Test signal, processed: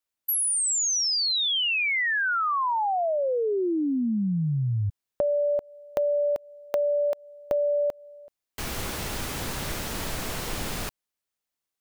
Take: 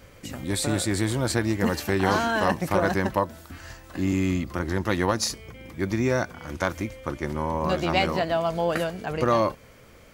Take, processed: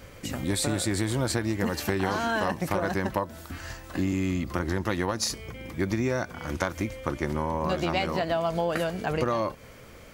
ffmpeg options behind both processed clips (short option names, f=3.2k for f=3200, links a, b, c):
-af "acompressor=threshold=-26dB:ratio=6,volume=3dB"